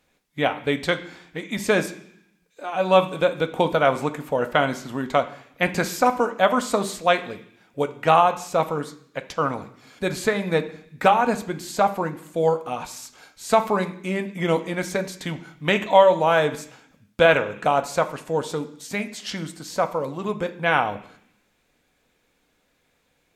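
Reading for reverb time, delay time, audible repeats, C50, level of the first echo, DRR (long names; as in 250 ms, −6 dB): 0.65 s, no echo audible, no echo audible, 14.0 dB, no echo audible, 7.0 dB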